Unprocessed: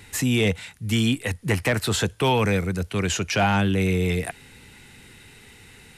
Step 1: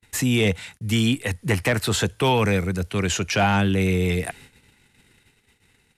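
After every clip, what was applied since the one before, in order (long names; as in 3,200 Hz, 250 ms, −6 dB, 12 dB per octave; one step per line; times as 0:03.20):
noise gate −45 dBFS, range −41 dB
level +1 dB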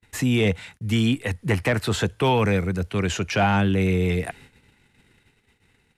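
high-shelf EQ 4,100 Hz −8.5 dB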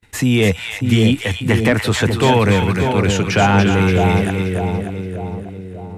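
echo with a time of its own for lows and highs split 900 Hz, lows 594 ms, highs 287 ms, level −5 dB
level +6 dB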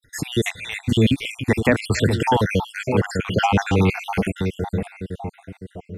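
time-frequency cells dropped at random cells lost 58%
level −1.5 dB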